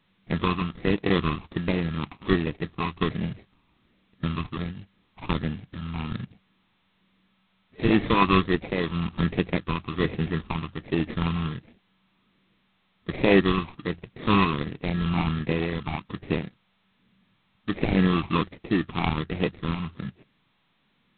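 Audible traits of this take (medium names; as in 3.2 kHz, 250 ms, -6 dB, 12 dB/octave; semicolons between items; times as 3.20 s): tremolo triangle 1 Hz, depth 55%; aliases and images of a low sample rate 1.5 kHz, jitter 0%; phasing stages 8, 1.3 Hz, lowest notch 500–1200 Hz; G.726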